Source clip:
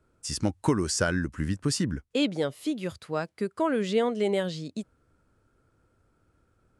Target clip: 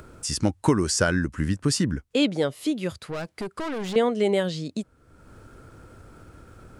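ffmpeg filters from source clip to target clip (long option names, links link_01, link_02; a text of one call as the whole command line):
ffmpeg -i in.wav -filter_complex "[0:a]asettb=1/sr,asplit=3[link_01][link_02][link_03];[link_01]atrim=end=2.984[link_04];[link_02]atrim=start=2.98:end=3.96,asetpts=PTS-STARTPTS,afade=type=in:duration=0.004:curve=qsin,afade=type=out:start_time=0.976:duration=0.004:curve=qsin,aeval=exprs='(tanh(44.7*val(0)+0.2)-tanh(0.2))/44.7':channel_layout=same[link_05];[link_03]atrim=start=3.956[link_06];[link_04][link_05]acrossfade=duration=0.004:curve1=hsin:curve2=qsin[link_07];[link_07][link_06]acrossfade=duration=0.004:curve1=qsin:curve2=hsin,asplit=2[link_08][link_09];[link_09]acompressor=mode=upward:threshold=-29dB:ratio=2.5,volume=2.5dB[link_10];[link_08][link_10]amix=inputs=2:normalize=0,volume=-3.5dB" out.wav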